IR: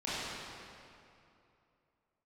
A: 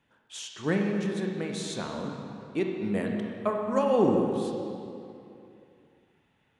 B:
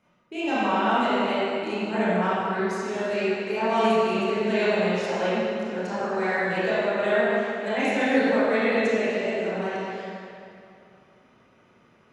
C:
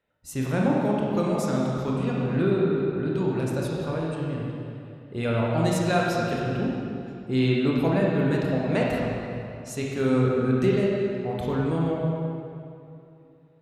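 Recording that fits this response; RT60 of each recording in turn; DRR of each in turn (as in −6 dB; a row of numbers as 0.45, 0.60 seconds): B; 2.7, 2.7, 2.7 seconds; 1.5, −12.0, −4.0 decibels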